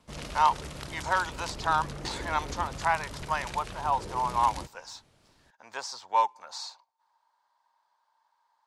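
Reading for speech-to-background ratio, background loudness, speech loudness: 10.0 dB, −40.0 LKFS, −30.0 LKFS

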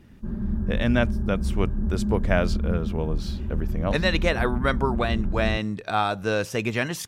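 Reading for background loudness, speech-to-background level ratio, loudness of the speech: −29.5 LKFS, 3.0 dB, −26.5 LKFS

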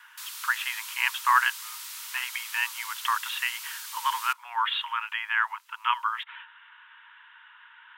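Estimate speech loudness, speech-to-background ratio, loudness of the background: −28.5 LKFS, 8.5 dB, −37.0 LKFS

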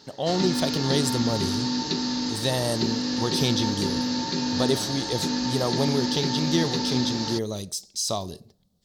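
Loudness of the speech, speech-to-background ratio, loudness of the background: −27.5 LKFS, −0.5 dB, −27.0 LKFS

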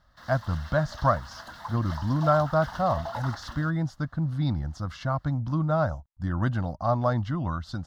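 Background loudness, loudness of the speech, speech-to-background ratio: −40.5 LKFS, −28.0 LKFS, 12.5 dB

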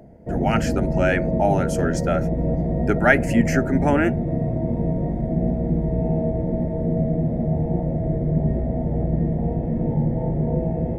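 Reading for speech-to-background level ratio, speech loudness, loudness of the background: 0.5 dB, −23.0 LKFS, −23.5 LKFS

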